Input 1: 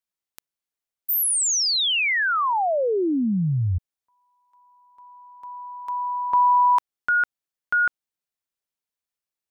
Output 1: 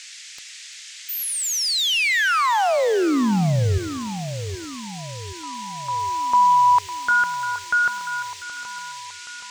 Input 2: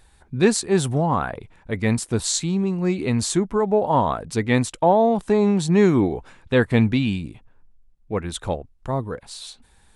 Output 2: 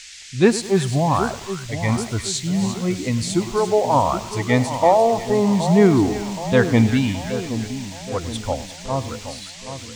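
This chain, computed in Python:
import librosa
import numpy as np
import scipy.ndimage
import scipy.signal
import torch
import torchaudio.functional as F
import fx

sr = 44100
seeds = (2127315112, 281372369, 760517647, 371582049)

y = fx.noise_reduce_blind(x, sr, reduce_db=11)
y = fx.high_shelf(y, sr, hz=6300.0, db=-9.5)
y = fx.dmg_noise_band(y, sr, seeds[0], low_hz=1800.0, high_hz=7700.0, level_db=-43.0)
y = fx.echo_split(y, sr, split_hz=1300.0, low_ms=773, high_ms=346, feedback_pct=52, wet_db=-10.5)
y = fx.echo_crushed(y, sr, ms=103, feedback_pct=55, bits=6, wet_db=-15.0)
y = F.gain(torch.from_numpy(y), 2.5).numpy()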